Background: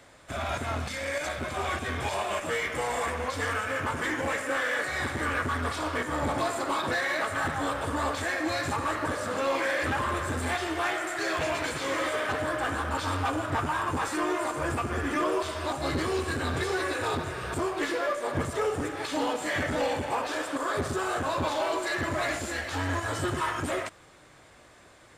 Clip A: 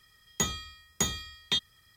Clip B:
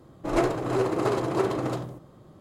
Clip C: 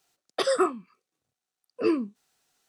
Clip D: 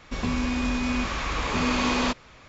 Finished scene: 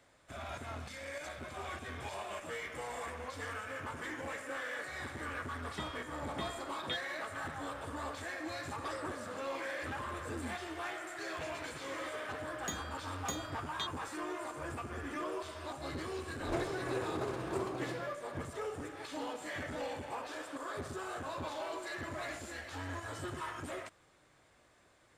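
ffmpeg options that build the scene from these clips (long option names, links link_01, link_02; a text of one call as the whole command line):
ffmpeg -i bed.wav -i cue0.wav -i cue1.wav -i cue2.wav -filter_complex "[1:a]asplit=2[link_01][link_02];[0:a]volume=-12dB[link_03];[link_01]aresample=8000,aresample=44100[link_04];[3:a]acompressor=threshold=-29dB:ratio=6:attack=3.2:release=140:knee=1:detection=peak[link_05];[link_04]atrim=end=1.96,asetpts=PTS-STARTPTS,volume=-11dB,afade=type=in:duration=0.004:curve=hsin,afade=type=out:start_time=1.956:duration=0.004:curve=hsin,adelay=5380[link_06];[link_05]atrim=end=2.68,asetpts=PTS-STARTPTS,volume=-12.5dB,afade=type=in:duration=0.004:curve=hsin,afade=type=out:start_time=2.676:duration=0.004:curve=hsin,adelay=8460[link_07];[link_02]atrim=end=1.96,asetpts=PTS-STARTPTS,volume=-12.5dB,afade=type=in:duration=0.004:curve=hsin,afade=type=out:start_time=1.956:duration=0.004:curve=hsin,adelay=12280[link_08];[2:a]atrim=end=2.4,asetpts=PTS-STARTPTS,volume=-13dB,afade=type=in:duration=0.004:curve=hsin,afade=type=out:start_time=2.396:duration=0.004:curve=hsin,adelay=16160[link_09];[link_03][link_06][link_07][link_08][link_09]amix=inputs=5:normalize=0" out.wav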